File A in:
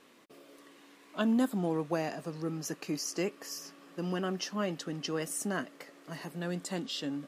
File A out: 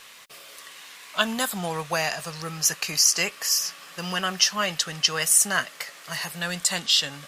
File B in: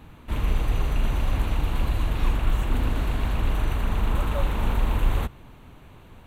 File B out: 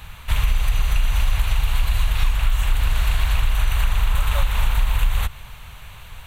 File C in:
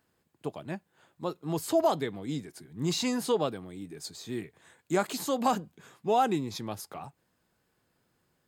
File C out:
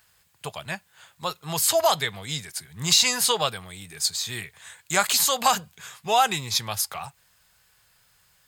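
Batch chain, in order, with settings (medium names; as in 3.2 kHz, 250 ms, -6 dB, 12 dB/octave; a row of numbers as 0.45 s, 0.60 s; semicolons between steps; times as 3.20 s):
amplifier tone stack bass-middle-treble 10-0-10; compression, threshold -31 dBFS; normalise loudness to -23 LUFS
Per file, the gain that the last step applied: +20.0 dB, +17.0 dB, +18.0 dB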